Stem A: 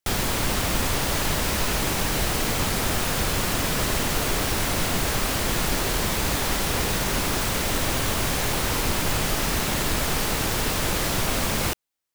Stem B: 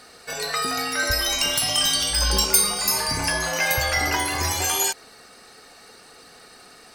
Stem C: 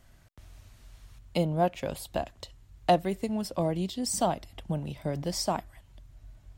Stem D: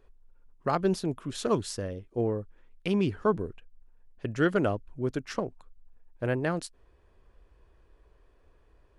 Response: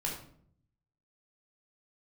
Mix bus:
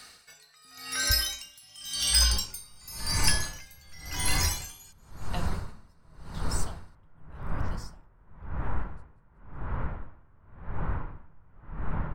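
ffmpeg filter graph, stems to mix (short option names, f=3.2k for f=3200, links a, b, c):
-filter_complex "[0:a]lowpass=f=1.3k:w=0.5412,lowpass=f=1.3k:w=1.3066,adelay=2250,volume=-3.5dB,asplit=2[a][b];[b]volume=-7dB[c];[1:a]volume=1.5dB,asplit=2[d][e];[e]volume=-22dB[f];[2:a]adelay=2450,volume=-7.5dB,asplit=2[g][h];[h]volume=-9dB[i];[3:a]adelay=2350,volume=-18dB,asplit=2[j][k];[k]volume=-6dB[l];[4:a]atrim=start_sample=2205[m];[c][i]amix=inputs=2:normalize=0[n];[n][m]afir=irnorm=-1:irlink=0[o];[f][l]amix=inputs=2:normalize=0,aecho=0:1:186|372|558|744|930|1116|1302:1|0.49|0.24|0.118|0.0576|0.0282|0.0138[p];[a][d][g][j][o][p]amix=inputs=6:normalize=0,equalizer=f=450:t=o:w=2.3:g=-13,acrossover=split=420|3000[q][r][s];[r]acompressor=threshold=-30dB:ratio=6[t];[q][t][s]amix=inputs=3:normalize=0,aeval=exprs='val(0)*pow(10,-31*(0.5-0.5*cos(2*PI*0.92*n/s))/20)':c=same"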